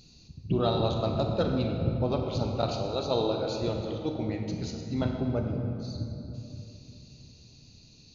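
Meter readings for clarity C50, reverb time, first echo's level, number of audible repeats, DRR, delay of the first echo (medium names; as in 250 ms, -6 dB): 3.5 dB, 2.9 s, no echo, no echo, 2.5 dB, no echo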